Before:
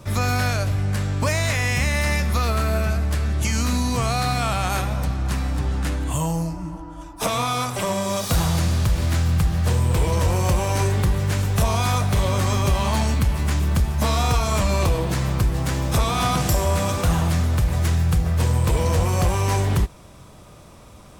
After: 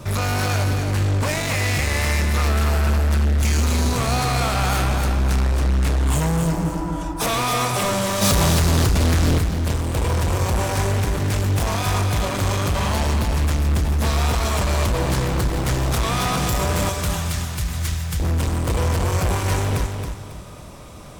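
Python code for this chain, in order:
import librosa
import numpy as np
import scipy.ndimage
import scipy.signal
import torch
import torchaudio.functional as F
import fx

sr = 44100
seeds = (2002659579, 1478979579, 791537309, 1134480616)

p1 = fx.tone_stack(x, sr, knobs='5-5-5', at=(16.89, 18.2))
p2 = fx.rider(p1, sr, range_db=4, speed_s=0.5)
p3 = np.clip(p2, -10.0 ** (-25.5 / 20.0), 10.0 ** (-25.5 / 20.0))
p4 = fx.wow_flutter(p3, sr, seeds[0], rate_hz=2.1, depth_cents=20.0)
p5 = p4 + fx.echo_feedback(p4, sr, ms=274, feedback_pct=32, wet_db=-6, dry=0)
p6 = fx.env_flatten(p5, sr, amount_pct=100, at=(8.21, 9.38), fade=0.02)
y = F.gain(torch.from_numpy(p6), 5.5).numpy()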